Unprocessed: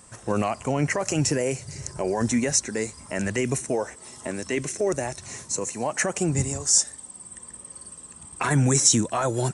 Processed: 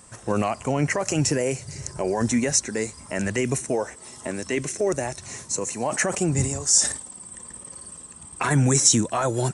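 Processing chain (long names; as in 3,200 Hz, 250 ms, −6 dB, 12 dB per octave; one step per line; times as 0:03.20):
0:05.65–0:08.04: level that may fall only so fast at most 97 dB per second
level +1 dB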